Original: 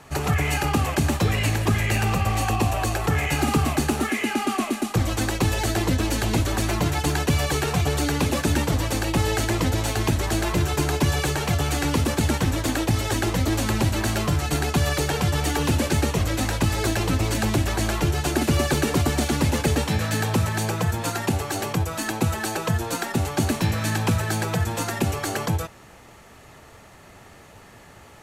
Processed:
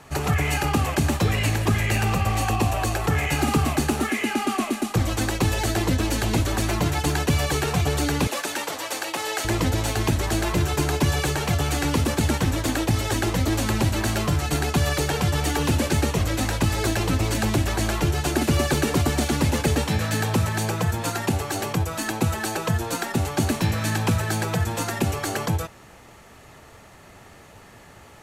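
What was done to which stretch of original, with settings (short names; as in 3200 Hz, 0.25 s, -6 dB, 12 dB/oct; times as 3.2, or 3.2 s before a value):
8.27–9.45 HPF 560 Hz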